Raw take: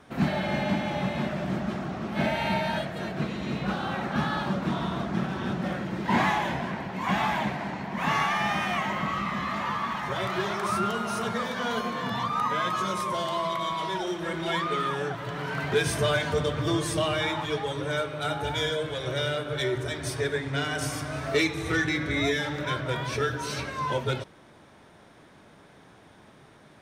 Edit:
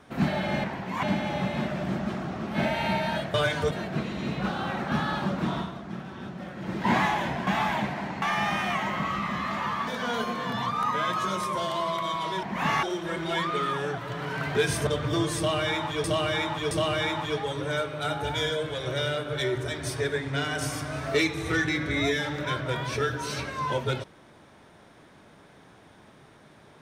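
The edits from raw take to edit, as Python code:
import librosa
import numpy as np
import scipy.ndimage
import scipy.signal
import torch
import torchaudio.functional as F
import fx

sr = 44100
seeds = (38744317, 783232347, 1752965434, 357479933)

y = fx.edit(x, sr, fx.fade_down_up(start_s=4.81, length_s=1.13, db=-8.5, fade_s=0.15),
    fx.move(start_s=6.71, length_s=0.39, to_s=0.64),
    fx.move(start_s=7.85, length_s=0.4, to_s=14.0),
    fx.cut(start_s=9.9, length_s=1.54),
    fx.move(start_s=16.04, length_s=0.37, to_s=2.95),
    fx.repeat(start_s=16.91, length_s=0.67, count=3), tone=tone)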